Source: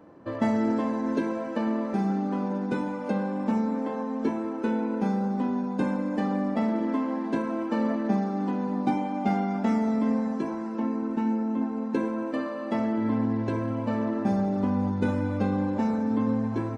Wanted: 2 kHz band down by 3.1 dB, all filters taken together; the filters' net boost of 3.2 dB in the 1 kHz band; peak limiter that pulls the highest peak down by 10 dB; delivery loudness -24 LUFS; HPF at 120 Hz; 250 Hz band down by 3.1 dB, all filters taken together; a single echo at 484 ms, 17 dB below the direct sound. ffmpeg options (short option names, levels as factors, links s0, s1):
-af "highpass=120,equalizer=f=250:t=o:g=-3.5,equalizer=f=1000:t=o:g=5.5,equalizer=f=2000:t=o:g=-6.5,alimiter=limit=0.0708:level=0:latency=1,aecho=1:1:484:0.141,volume=2.37"